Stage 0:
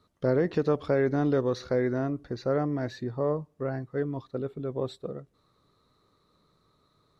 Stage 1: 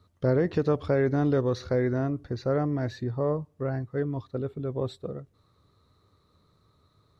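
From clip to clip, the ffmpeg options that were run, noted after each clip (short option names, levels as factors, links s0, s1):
-af "equalizer=f=87:w=1.8:g=13.5"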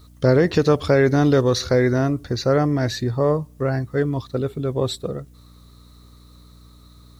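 -af "aeval=exprs='val(0)+0.002*(sin(2*PI*60*n/s)+sin(2*PI*2*60*n/s)/2+sin(2*PI*3*60*n/s)/3+sin(2*PI*4*60*n/s)/4+sin(2*PI*5*60*n/s)/5)':c=same,crystalizer=i=4.5:c=0,volume=2.37"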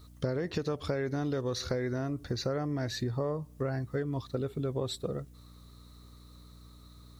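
-af "acompressor=threshold=0.0708:ratio=10,volume=0.531"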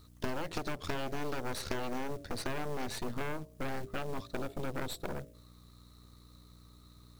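-af "aeval=exprs='0.119*(cos(1*acos(clip(val(0)/0.119,-1,1)))-cos(1*PI/2))+0.0422*(cos(3*acos(clip(val(0)/0.119,-1,1)))-cos(3*PI/2))+0.0106*(cos(7*acos(clip(val(0)/0.119,-1,1)))-cos(7*PI/2))+0.015*(cos(8*acos(clip(val(0)/0.119,-1,1)))-cos(8*PI/2))':c=same,bandreject=f=56.75:t=h:w=4,bandreject=f=113.5:t=h:w=4,bandreject=f=170.25:t=h:w=4,bandreject=f=227:t=h:w=4,bandreject=f=283.75:t=h:w=4,bandreject=f=340.5:t=h:w=4,bandreject=f=397.25:t=h:w=4,bandreject=f=454:t=h:w=4,bandreject=f=510.75:t=h:w=4,bandreject=f=567.5:t=h:w=4,bandreject=f=624.25:t=h:w=4,bandreject=f=681:t=h:w=4,acrusher=bits=5:mode=log:mix=0:aa=0.000001"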